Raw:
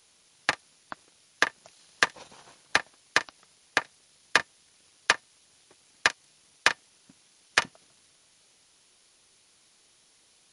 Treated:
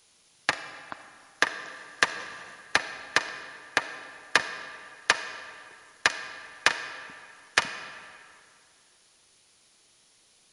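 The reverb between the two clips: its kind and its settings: digital reverb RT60 2.4 s, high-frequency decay 0.7×, pre-delay 10 ms, DRR 9.5 dB

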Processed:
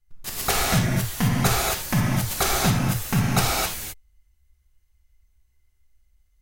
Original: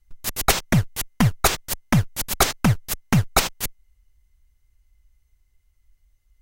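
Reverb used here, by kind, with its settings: non-linear reverb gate 0.29 s flat, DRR -5.5 dB; gain -7 dB

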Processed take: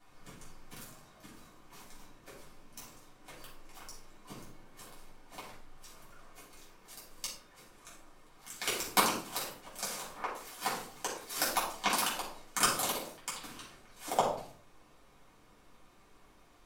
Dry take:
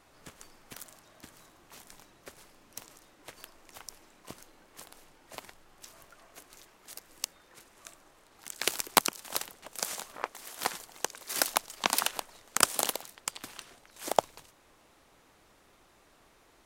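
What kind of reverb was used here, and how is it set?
shoebox room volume 530 m³, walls furnished, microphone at 7.9 m; gain -12 dB

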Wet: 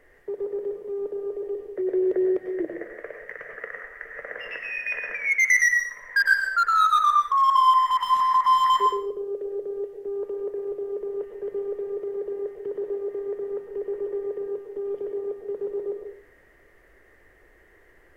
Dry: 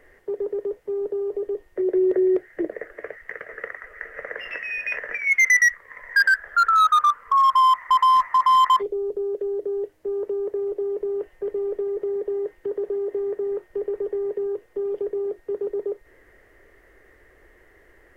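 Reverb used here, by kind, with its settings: plate-style reverb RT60 0.54 s, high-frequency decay 1×, pre-delay 85 ms, DRR 3 dB; gain -3.5 dB

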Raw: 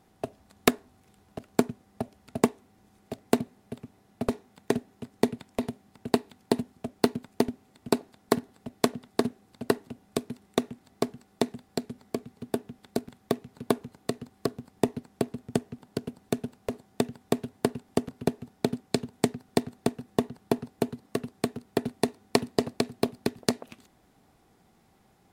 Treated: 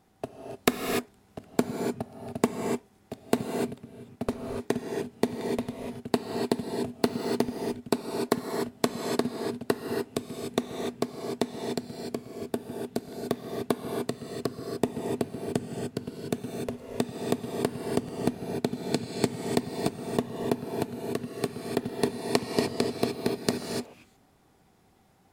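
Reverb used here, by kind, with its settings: non-linear reverb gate 0.32 s rising, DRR 1.5 dB; gain -2 dB

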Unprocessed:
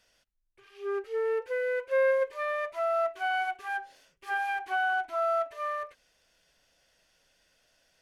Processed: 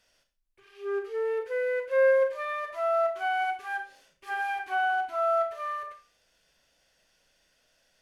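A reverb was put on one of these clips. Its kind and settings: Schroeder reverb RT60 0.33 s, combs from 28 ms, DRR 6 dB; gain -1 dB

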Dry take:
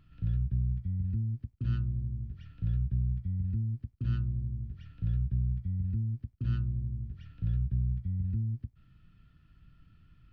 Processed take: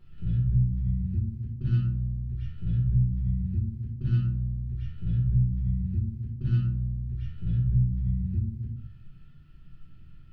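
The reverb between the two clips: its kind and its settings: shoebox room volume 42 m³, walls mixed, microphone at 1.2 m; gain -2.5 dB

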